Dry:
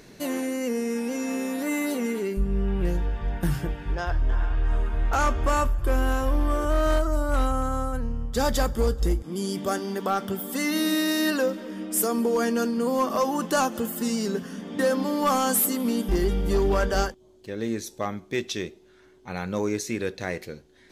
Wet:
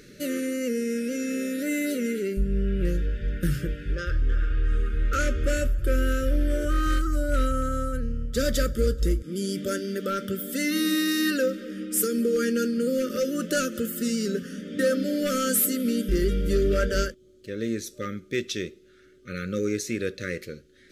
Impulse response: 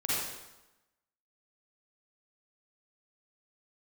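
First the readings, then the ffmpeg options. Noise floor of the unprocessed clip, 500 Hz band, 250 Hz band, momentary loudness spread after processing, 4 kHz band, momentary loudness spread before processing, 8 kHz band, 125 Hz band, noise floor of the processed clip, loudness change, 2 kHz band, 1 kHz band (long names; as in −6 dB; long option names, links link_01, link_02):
−54 dBFS, −0.5 dB, 0.0 dB, 8 LU, 0.0 dB, 8 LU, 0.0 dB, 0.0 dB, −54 dBFS, −0.5 dB, 0.0 dB, −7.5 dB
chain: -af "afftfilt=real='re*(1-between(b*sr/4096,600,1200))':imag='im*(1-between(b*sr/4096,600,1200))':win_size=4096:overlap=0.75"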